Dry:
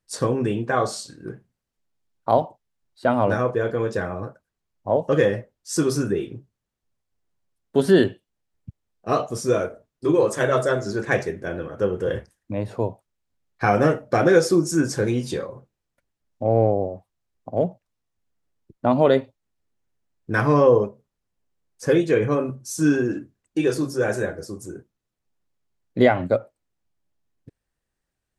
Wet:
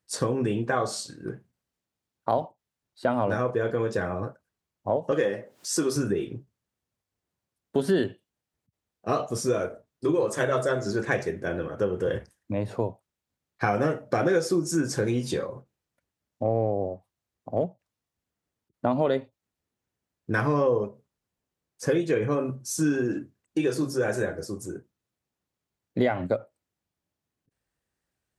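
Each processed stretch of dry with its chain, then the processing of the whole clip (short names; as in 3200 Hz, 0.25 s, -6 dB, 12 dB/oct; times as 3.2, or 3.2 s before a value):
5.11–5.96 upward compressor, threshold -25 dBFS + HPF 220 Hz
whole clip: HPF 63 Hz; compressor 2.5:1, threshold -23 dBFS; ending taper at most 350 dB/s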